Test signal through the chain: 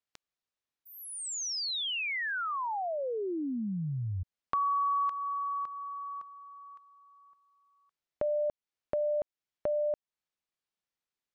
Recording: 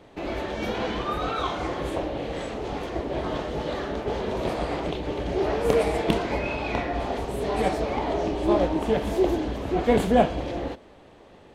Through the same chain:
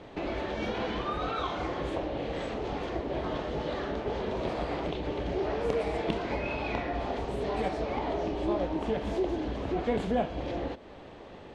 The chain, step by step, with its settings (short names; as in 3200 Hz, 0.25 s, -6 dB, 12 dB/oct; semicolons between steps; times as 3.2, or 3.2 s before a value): LPF 5600 Hz 12 dB/oct; compressor 2:1, threshold -39 dBFS; gain +3.5 dB